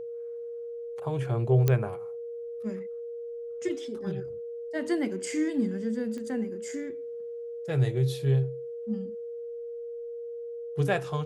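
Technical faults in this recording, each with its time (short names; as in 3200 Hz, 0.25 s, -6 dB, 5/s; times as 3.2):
tone 470 Hz -35 dBFS
1.68 pop -11 dBFS
6.18 pop -28 dBFS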